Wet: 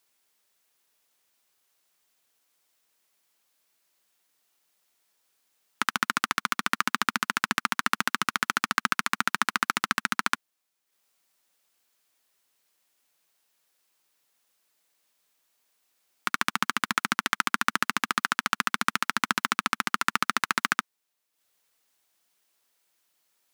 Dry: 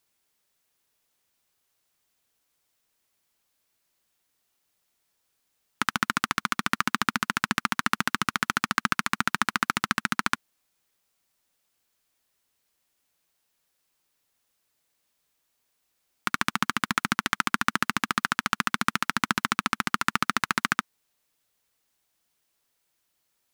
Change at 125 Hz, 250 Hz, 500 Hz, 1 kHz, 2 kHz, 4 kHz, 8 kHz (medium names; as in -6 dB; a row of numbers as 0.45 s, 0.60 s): -7.0 dB, -4.0 dB, -1.0 dB, 0.0 dB, 0.0 dB, +0.5 dB, +0.5 dB